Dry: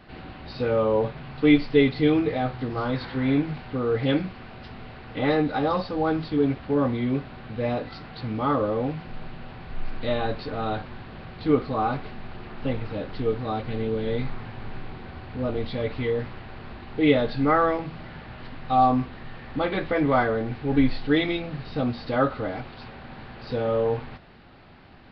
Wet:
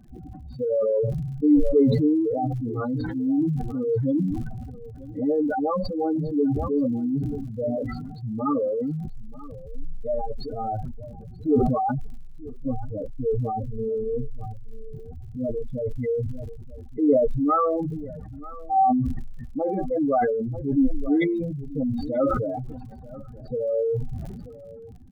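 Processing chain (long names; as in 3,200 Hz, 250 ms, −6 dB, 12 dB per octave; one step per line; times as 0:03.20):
expanding power law on the bin magnitudes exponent 3.8
surface crackle 69 per second −51 dBFS
on a send: single-tap delay 936 ms −19 dB
on the sum: level that may fall only so fast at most 31 dB per second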